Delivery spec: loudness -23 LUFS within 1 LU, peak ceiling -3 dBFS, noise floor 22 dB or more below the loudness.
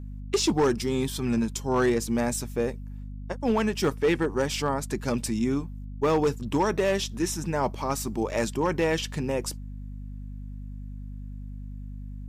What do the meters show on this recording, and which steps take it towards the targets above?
clipped 0.8%; flat tops at -17.0 dBFS; hum 50 Hz; harmonics up to 250 Hz; hum level -35 dBFS; loudness -27.0 LUFS; peak -17.0 dBFS; loudness target -23.0 LUFS
-> clip repair -17 dBFS; de-hum 50 Hz, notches 5; gain +4 dB

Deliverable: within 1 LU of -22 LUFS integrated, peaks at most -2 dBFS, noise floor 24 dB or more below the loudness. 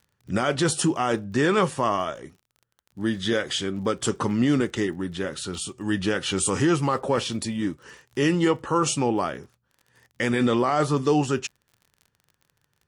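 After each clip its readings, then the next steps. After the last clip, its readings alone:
ticks 35/s; loudness -24.5 LUFS; peak -11.0 dBFS; loudness target -22.0 LUFS
-> de-click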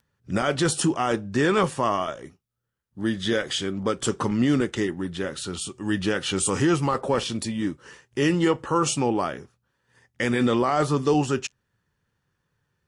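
ticks 0.078/s; loudness -24.5 LUFS; peak -10.5 dBFS; loudness target -22.0 LUFS
-> gain +2.5 dB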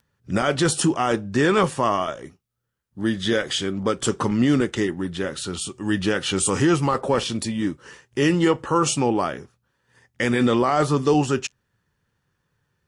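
loudness -22.0 LUFS; peak -8.0 dBFS; noise floor -75 dBFS

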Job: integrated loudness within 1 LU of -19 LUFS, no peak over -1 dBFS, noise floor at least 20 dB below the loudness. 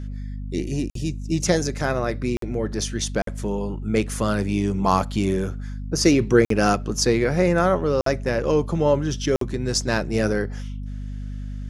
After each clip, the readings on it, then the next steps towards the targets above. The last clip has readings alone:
dropouts 6; longest dropout 53 ms; hum 50 Hz; harmonics up to 250 Hz; hum level -28 dBFS; loudness -22.5 LUFS; peak -4.0 dBFS; loudness target -19.0 LUFS
-> interpolate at 0.9/2.37/3.22/6.45/8.01/9.36, 53 ms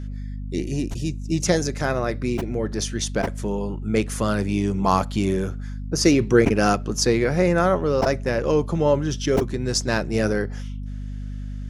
dropouts 0; hum 50 Hz; harmonics up to 250 Hz; hum level -28 dBFS
-> notches 50/100/150/200/250 Hz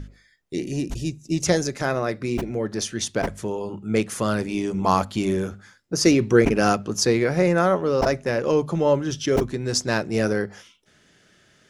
hum none; loudness -23.0 LUFS; peak -4.0 dBFS; loudness target -19.0 LUFS
-> gain +4 dB; limiter -1 dBFS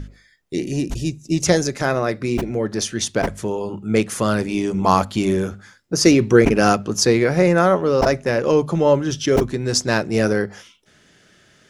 loudness -19.0 LUFS; peak -1.0 dBFS; noise floor -55 dBFS

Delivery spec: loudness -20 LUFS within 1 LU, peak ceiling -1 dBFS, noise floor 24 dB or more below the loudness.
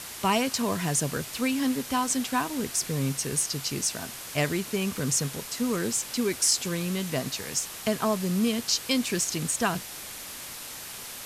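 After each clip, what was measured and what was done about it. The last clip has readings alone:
noise floor -40 dBFS; noise floor target -52 dBFS; loudness -27.5 LUFS; peak -10.5 dBFS; loudness target -20.0 LUFS
-> denoiser 12 dB, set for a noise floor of -40 dBFS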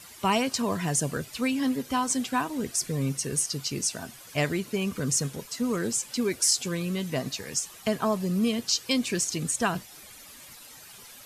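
noise floor -48 dBFS; noise floor target -52 dBFS
-> denoiser 6 dB, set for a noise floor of -48 dBFS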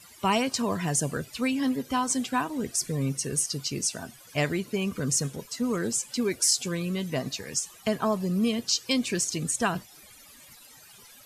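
noise floor -52 dBFS; loudness -27.5 LUFS; peak -11.0 dBFS; loudness target -20.0 LUFS
-> gain +7.5 dB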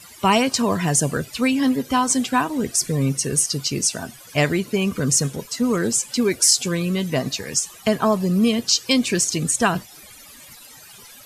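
loudness -20.0 LUFS; peak -3.5 dBFS; noise floor -44 dBFS

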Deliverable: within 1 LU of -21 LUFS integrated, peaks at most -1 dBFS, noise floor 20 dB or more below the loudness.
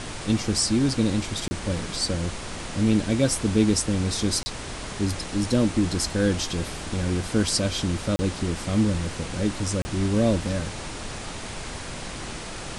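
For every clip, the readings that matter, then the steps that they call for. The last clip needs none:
dropouts 4; longest dropout 30 ms; noise floor -35 dBFS; noise floor target -46 dBFS; loudness -25.5 LUFS; peak -8.0 dBFS; loudness target -21.0 LUFS
-> interpolate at 1.48/4.43/8.16/9.82, 30 ms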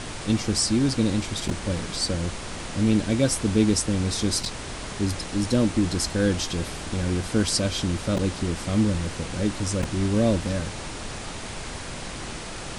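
dropouts 0; noise floor -35 dBFS; noise floor target -46 dBFS
-> noise print and reduce 11 dB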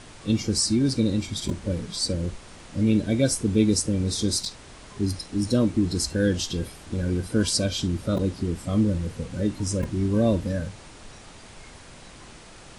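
noise floor -46 dBFS; loudness -25.0 LUFS; peak -8.5 dBFS; loudness target -21.0 LUFS
-> gain +4 dB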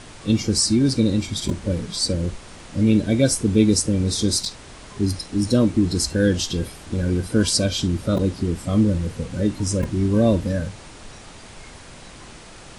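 loudness -21.0 LUFS; peak -4.5 dBFS; noise floor -42 dBFS

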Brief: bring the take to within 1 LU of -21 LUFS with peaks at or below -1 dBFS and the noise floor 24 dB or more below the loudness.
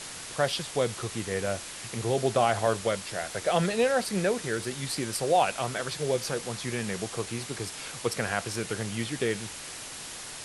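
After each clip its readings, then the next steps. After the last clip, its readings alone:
noise floor -41 dBFS; noise floor target -54 dBFS; loudness -29.5 LUFS; peak -10.5 dBFS; loudness target -21.0 LUFS
-> denoiser 13 dB, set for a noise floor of -41 dBFS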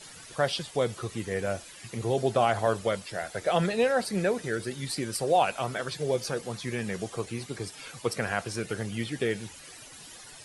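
noise floor -48 dBFS; noise floor target -54 dBFS
-> denoiser 6 dB, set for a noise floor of -48 dBFS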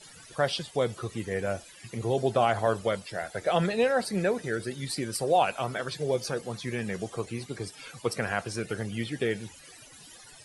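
noise floor -51 dBFS; noise floor target -54 dBFS
-> denoiser 6 dB, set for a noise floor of -51 dBFS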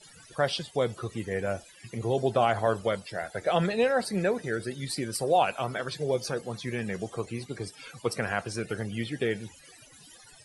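noise floor -54 dBFS; loudness -30.0 LUFS; peak -11.5 dBFS; loudness target -21.0 LUFS
-> gain +9 dB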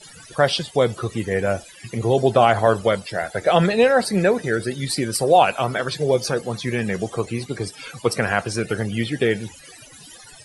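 loudness -21.0 LUFS; peak -2.5 dBFS; noise floor -45 dBFS

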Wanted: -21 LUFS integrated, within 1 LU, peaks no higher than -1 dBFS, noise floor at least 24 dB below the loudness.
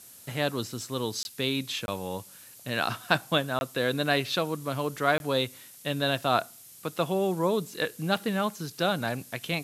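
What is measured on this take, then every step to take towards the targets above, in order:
dropouts 4; longest dropout 21 ms; noise floor -50 dBFS; noise floor target -53 dBFS; loudness -29.0 LUFS; peak -5.0 dBFS; loudness target -21.0 LUFS
-> interpolate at 1.23/1.86/3.59/5.18, 21 ms; denoiser 6 dB, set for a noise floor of -50 dBFS; gain +8 dB; limiter -1 dBFS

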